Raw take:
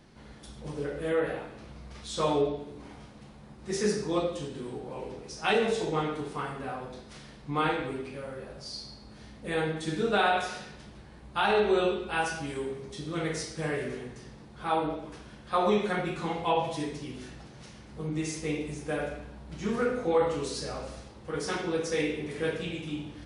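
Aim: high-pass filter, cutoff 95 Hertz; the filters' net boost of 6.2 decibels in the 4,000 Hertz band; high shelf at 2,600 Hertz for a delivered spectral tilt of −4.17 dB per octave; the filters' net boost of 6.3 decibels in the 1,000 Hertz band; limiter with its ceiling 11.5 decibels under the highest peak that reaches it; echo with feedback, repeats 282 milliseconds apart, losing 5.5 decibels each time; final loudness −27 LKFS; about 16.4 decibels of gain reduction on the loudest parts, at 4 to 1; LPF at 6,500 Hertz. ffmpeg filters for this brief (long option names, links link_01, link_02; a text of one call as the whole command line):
ffmpeg -i in.wav -af "highpass=95,lowpass=6500,equalizer=frequency=1000:width_type=o:gain=7.5,highshelf=frequency=2600:gain=4,equalizer=frequency=4000:width_type=o:gain=4.5,acompressor=threshold=-37dB:ratio=4,alimiter=level_in=10.5dB:limit=-24dB:level=0:latency=1,volume=-10.5dB,aecho=1:1:282|564|846|1128|1410|1692|1974:0.531|0.281|0.149|0.079|0.0419|0.0222|0.0118,volume=15dB" out.wav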